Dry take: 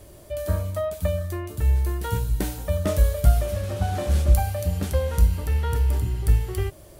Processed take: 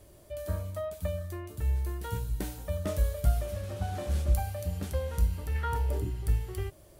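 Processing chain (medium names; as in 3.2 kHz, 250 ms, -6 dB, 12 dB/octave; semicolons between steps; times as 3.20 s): 5.54–6.09 s: peaking EQ 2 kHz -> 290 Hz +12.5 dB 0.94 oct; trim -8.5 dB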